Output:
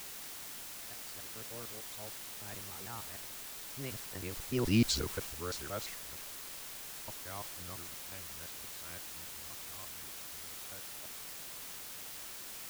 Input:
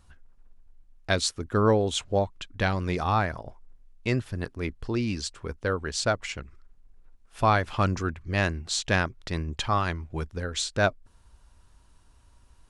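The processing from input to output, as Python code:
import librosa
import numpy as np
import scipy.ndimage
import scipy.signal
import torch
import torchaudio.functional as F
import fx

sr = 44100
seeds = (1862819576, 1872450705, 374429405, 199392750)

p1 = fx.local_reverse(x, sr, ms=162.0)
p2 = fx.doppler_pass(p1, sr, speed_mps=24, closest_m=2.3, pass_at_s=4.81)
p3 = fx.quant_dither(p2, sr, seeds[0], bits=6, dither='triangular')
p4 = p2 + (p3 * 10.0 ** (-12.0 / 20.0))
p5 = fx.transient(p4, sr, attack_db=-1, sustain_db=3)
y = p5 * 10.0 ** (2.0 / 20.0)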